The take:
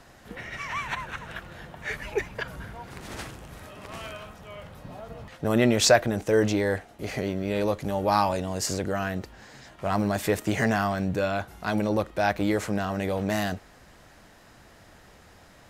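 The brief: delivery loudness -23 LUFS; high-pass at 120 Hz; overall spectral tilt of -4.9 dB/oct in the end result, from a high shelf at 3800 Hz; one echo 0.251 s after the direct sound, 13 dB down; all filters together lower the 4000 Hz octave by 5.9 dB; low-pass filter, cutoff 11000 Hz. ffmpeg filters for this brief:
-af "highpass=120,lowpass=11k,highshelf=f=3.8k:g=-6.5,equalizer=f=4k:t=o:g=-3,aecho=1:1:251:0.224,volume=4.5dB"

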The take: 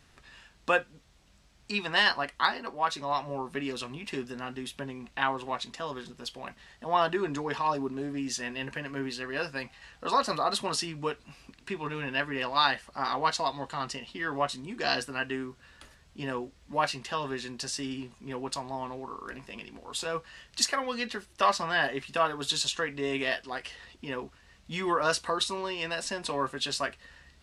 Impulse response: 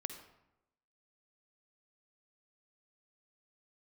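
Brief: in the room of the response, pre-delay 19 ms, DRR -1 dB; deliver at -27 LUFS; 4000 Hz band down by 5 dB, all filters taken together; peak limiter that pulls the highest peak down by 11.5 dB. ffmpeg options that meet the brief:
-filter_complex "[0:a]equalizer=f=4k:t=o:g=-6.5,alimiter=limit=-21dB:level=0:latency=1,asplit=2[a][b];[1:a]atrim=start_sample=2205,adelay=19[c];[b][c]afir=irnorm=-1:irlink=0,volume=2dB[d];[a][d]amix=inputs=2:normalize=0,volume=4.5dB"

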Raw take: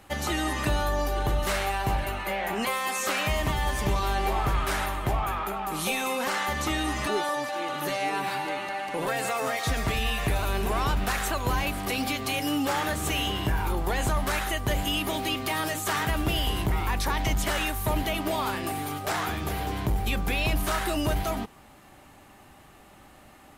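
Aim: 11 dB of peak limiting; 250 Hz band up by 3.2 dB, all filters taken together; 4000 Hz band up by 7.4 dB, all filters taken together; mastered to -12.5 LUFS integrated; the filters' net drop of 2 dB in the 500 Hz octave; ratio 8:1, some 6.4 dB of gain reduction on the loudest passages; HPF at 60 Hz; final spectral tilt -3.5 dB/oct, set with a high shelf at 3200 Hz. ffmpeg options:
-af "highpass=60,equalizer=f=250:t=o:g=5.5,equalizer=f=500:t=o:g=-4.5,highshelf=f=3.2k:g=5,equalizer=f=4k:t=o:g=6.5,acompressor=threshold=-27dB:ratio=8,volume=21.5dB,alimiter=limit=-4dB:level=0:latency=1"

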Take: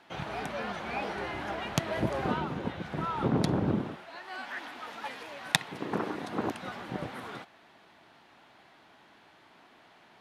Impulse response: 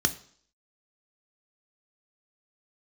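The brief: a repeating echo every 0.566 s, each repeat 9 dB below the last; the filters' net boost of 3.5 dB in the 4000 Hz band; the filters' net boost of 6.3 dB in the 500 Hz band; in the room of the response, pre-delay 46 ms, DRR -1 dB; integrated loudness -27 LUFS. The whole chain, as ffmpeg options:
-filter_complex "[0:a]equalizer=f=500:t=o:g=8,equalizer=f=4k:t=o:g=4,aecho=1:1:566|1132|1698|2264:0.355|0.124|0.0435|0.0152,asplit=2[a][b];[1:a]atrim=start_sample=2205,adelay=46[c];[b][c]afir=irnorm=-1:irlink=0,volume=-8dB[d];[a][d]amix=inputs=2:normalize=0,volume=-2.5dB"

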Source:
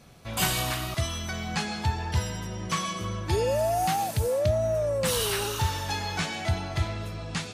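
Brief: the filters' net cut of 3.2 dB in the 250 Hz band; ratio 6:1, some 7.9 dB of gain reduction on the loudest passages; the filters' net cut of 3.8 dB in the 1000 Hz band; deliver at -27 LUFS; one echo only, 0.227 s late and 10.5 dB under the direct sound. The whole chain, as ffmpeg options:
-af "equalizer=f=250:t=o:g=-5,equalizer=f=1k:t=o:g=-5,acompressor=threshold=-30dB:ratio=6,aecho=1:1:227:0.299,volume=6.5dB"

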